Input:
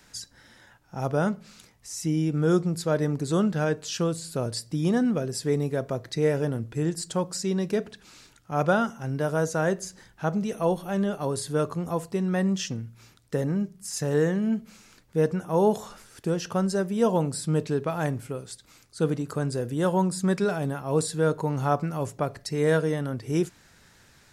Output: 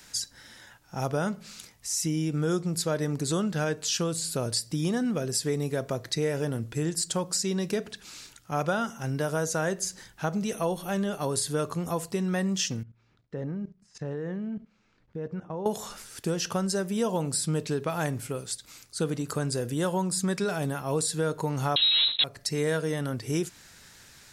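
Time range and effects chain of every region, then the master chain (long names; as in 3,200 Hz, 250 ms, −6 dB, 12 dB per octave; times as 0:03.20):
0:12.83–0:15.66: output level in coarse steps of 16 dB + head-to-tape spacing loss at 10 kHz 35 dB
0:21.76–0:22.24: leveller curve on the samples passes 5 + voice inversion scrambler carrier 4,000 Hz
whole clip: high-shelf EQ 2,200 Hz +8.5 dB; downward compressor 3 to 1, threshold −25 dBFS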